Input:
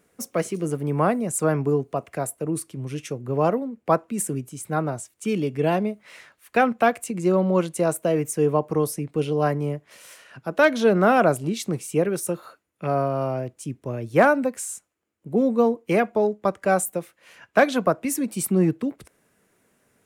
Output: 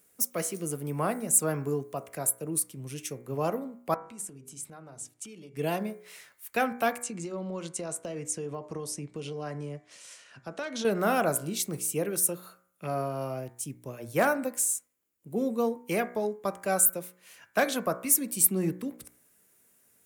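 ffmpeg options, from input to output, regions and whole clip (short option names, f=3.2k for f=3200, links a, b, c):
-filter_complex "[0:a]asettb=1/sr,asplit=3[a][b][c];[a]atrim=end=3.944[d];[b]atrim=start=3.94:end=5.57,asetpts=PTS-STARTPTS,afade=t=in:d=0.004:c=qsin,afade=t=out:st=1.626:d=0.004:c=qsin,lowpass=7.6k,bandreject=f=50:t=h:w=6,bandreject=f=100:t=h:w=6,bandreject=f=150:t=h:w=6,bandreject=f=200:t=h:w=6,bandreject=f=250:t=h:w=6,bandreject=f=300:t=h:w=6,bandreject=f=350:t=h:w=6,bandreject=f=400:t=h:w=6,bandreject=f=450:t=h:w=6,acompressor=threshold=-37dB:ratio=5:attack=3.2:release=140:knee=1:detection=peak[e];[c]atrim=start=5.566[f];[d][e]acrossfade=d=0.004:c1=hsin:c2=qsin[g];[g][f]acrossfade=d=0.004:c1=qsin:c2=hsin,asettb=1/sr,asplit=3[h][i][j];[h]atrim=end=7.024[k];[i]atrim=start=7.02:end=10.85,asetpts=PTS-STARTPTS,afade=t=in:d=0.004:c=qsin,afade=t=out:st=3.826:d=0.004:c=qsin,lowpass=f=7.7k:w=0.5412,lowpass=f=7.7k:w=1.3066,acompressor=threshold=-23dB:ratio=6:attack=3.2:release=140:knee=1:detection=peak,volume=17dB,asoftclip=hard,volume=-17dB[l];[j]atrim=start=10.846[m];[k][l]acrossfade=d=0.004:c1=hsin:c2=qsin[n];[n][m]acrossfade=d=0.004:c1=qsin:c2=hsin,aemphasis=mode=production:type=75fm,bandreject=f=60.6:t=h:w=4,bandreject=f=121.2:t=h:w=4,bandreject=f=181.8:t=h:w=4,bandreject=f=242.4:t=h:w=4,bandreject=f=303:t=h:w=4,bandreject=f=363.6:t=h:w=4,bandreject=f=424.2:t=h:w=4,bandreject=f=484.8:t=h:w=4,bandreject=f=545.4:t=h:w=4,bandreject=f=606:t=h:w=4,bandreject=f=666.6:t=h:w=4,bandreject=f=727.2:t=h:w=4,bandreject=f=787.8:t=h:w=4,bandreject=f=848.4:t=h:w=4,bandreject=f=909:t=h:w=4,bandreject=f=969.6:t=h:w=4,bandreject=f=1.0302k:t=h:w=4,bandreject=f=1.0908k:t=h:w=4,bandreject=f=1.1514k:t=h:w=4,bandreject=f=1.212k:t=h:w=4,bandreject=f=1.2726k:t=h:w=4,bandreject=f=1.3332k:t=h:w=4,bandreject=f=1.3938k:t=h:w=4,bandreject=f=1.4544k:t=h:w=4,bandreject=f=1.515k:t=h:w=4,bandreject=f=1.5756k:t=h:w=4,bandreject=f=1.6362k:t=h:w=4,bandreject=f=1.6968k:t=h:w=4,bandreject=f=1.7574k:t=h:w=4,bandreject=f=1.818k:t=h:w=4,bandreject=f=1.8786k:t=h:w=4,bandreject=f=1.9392k:t=h:w=4,bandreject=f=1.9998k:t=h:w=4,bandreject=f=2.0604k:t=h:w=4,bandreject=f=2.121k:t=h:w=4,bandreject=f=2.1816k:t=h:w=4,bandreject=f=2.2422k:t=h:w=4,bandreject=f=2.3028k:t=h:w=4,bandreject=f=2.3634k:t=h:w=4,volume=-7.5dB"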